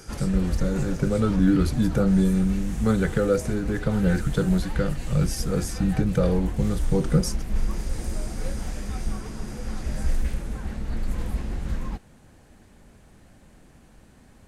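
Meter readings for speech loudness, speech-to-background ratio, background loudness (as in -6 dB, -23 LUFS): -24.5 LUFS, 8.5 dB, -33.0 LUFS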